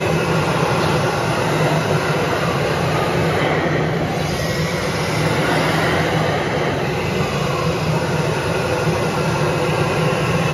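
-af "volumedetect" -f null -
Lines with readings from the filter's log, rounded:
mean_volume: -18.1 dB
max_volume: -4.5 dB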